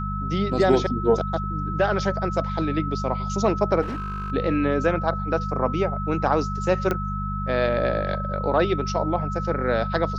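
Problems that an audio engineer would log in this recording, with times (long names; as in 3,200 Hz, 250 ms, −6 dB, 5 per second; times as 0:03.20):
mains hum 50 Hz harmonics 4 −29 dBFS
whistle 1,300 Hz −30 dBFS
0:03.81–0:04.32: clipping −26 dBFS
0:06.91: click −11 dBFS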